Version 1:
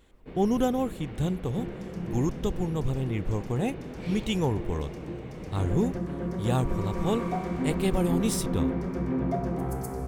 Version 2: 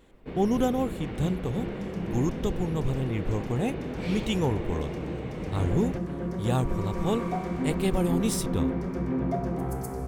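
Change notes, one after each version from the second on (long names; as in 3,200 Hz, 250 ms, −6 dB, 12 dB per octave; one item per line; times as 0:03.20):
first sound +5.5 dB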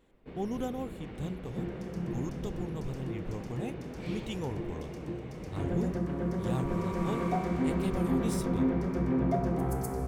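speech −10.0 dB
first sound −8.0 dB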